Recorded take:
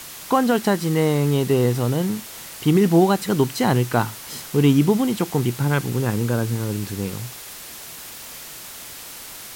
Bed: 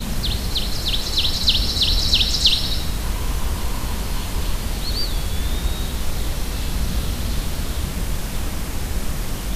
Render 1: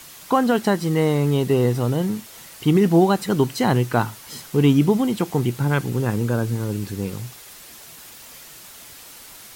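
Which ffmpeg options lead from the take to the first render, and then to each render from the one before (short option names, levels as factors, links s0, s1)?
-af "afftdn=nr=6:nf=-38"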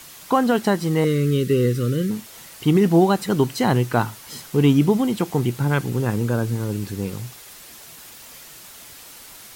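-filter_complex "[0:a]asettb=1/sr,asplit=3[s0][s1][s2];[s0]atrim=end=1.044[s3];[s1]atrim=start=1.04:end=2.11,asetpts=PTS-STARTPTS,afade=t=in:d=0.004:c=qsin,afade=t=out:st=1.066:d=0.004:c=qsin,asuperstop=centerf=810:order=8:qfactor=1.2[s4];[s2]atrim=start=2.106[s5];[s3][s4]acrossfade=d=0.004:c1=hsin:c2=qsin[s6];[s6][s5]acrossfade=d=0.004:c1=qsin:c2=hsin"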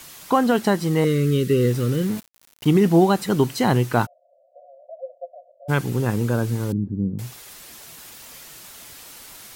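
-filter_complex "[0:a]asettb=1/sr,asplit=3[s0][s1][s2];[s0]atrim=end=1.614[s3];[s1]atrim=start=1.61:end=2.66,asetpts=PTS-STARTPTS,afade=t=in:d=0.004:c=qsin,afade=t=out:st=1.046:d=0.004:c=qsin,aeval=exprs='val(0)*gte(abs(val(0)),0.0237)':c=same[s4];[s2]atrim=start=2.656[s5];[s3][s4]acrossfade=d=0.004:c1=hsin:c2=qsin[s6];[s6][s5]acrossfade=d=0.004:c1=qsin:c2=hsin,asplit=3[s7][s8][s9];[s7]afade=t=out:st=4.05:d=0.02[s10];[s8]asuperpass=centerf=610:order=20:qfactor=3,afade=t=in:st=4.05:d=0.02,afade=t=out:st=5.68:d=0.02[s11];[s9]afade=t=in:st=5.68:d=0.02[s12];[s10][s11][s12]amix=inputs=3:normalize=0,asettb=1/sr,asplit=3[s13][s14][s15];[s13]atrim=end=6.724[s16];[s14]atrim=start=6.72:end=7.19,asetpts=PTS-STARTPTS,afade=t=in:d=0.004:c=qsin,afade=t=out:st=0.466:d=0.004:c=qsin,lowpass=f=240:t=q:w=1.9[s17];[s15]atrim=start=7.186[s18];[s16][s17]acrossfade=d=0.004:c1=hsin:c2=qsin[s19];[s19][s18]acrossfade=d=0.004:c1=qsin:c2=hsin"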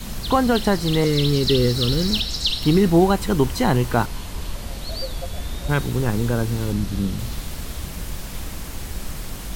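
-filter_complex "[1:a]volume=0.473[s0];[0:a][s0]amix=inputs=2:normalize=0"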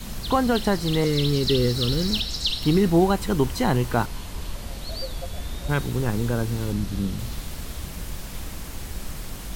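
-af "volume=0.708"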